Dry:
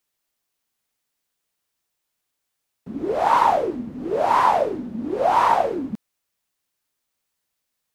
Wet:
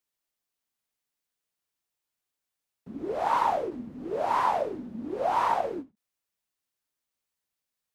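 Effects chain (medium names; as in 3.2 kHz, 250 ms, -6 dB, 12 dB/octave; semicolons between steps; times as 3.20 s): endings held to a fixed fall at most 310 dB/s; trim -8 dB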